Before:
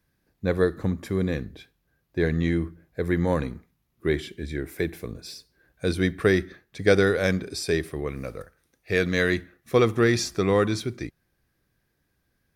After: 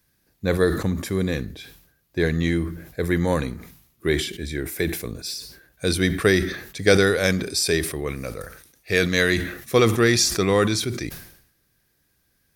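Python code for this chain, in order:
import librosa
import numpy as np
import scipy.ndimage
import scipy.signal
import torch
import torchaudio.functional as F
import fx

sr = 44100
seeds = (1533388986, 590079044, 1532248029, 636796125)

y = fx.high_shelf(x, sr, hz=3300.0, db=11.0)
y = fx.sustainer(y, sr, db_per_s=80.0)
y = F.gain(torch.from_numpy(y), 1.5).numpy()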